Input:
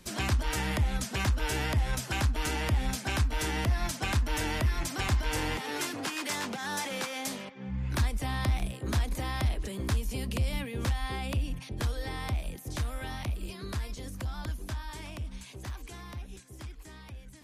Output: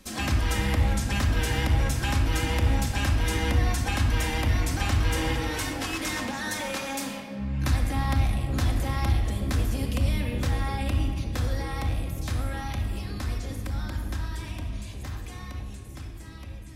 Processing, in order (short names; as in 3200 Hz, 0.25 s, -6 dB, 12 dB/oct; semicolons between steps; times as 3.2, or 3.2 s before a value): varispeed +4%; shoebox room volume 2800 m³, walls mixed, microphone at 2.1 m